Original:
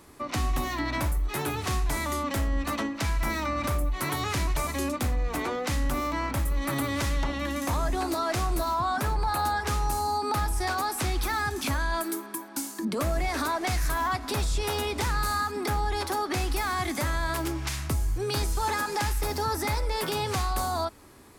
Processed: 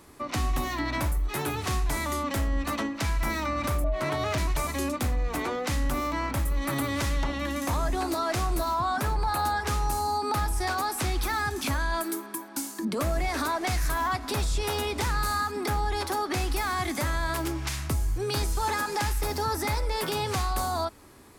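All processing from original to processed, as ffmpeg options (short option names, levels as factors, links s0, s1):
-filter_complex "[0:a]asettb=1/sr,asplit=3[s0][s1][s2];[s0]atrim=end=3.844[s3];[s1]atrim=start=3.84:end=4.38,asetpts=PTS-STARTPTS,afade=t=in:d=0.004:c=qsin,afade=t=out:st=0.536:d=0.004:c=qsin,adynamicsmooth=sensitivity=7:basefreq=2300,aeval=exprs='val(0)+0.0316*sin(2*PI*630*n/s)':c=same[s4];[s2]atrim=start=4.376[s5];[s3][s4]acrossfade=d=0.004:c1=hsin:c2=qsin[s6];[s6][s5]acrossfade=d=0.004:c1=qsin:c2=hsin"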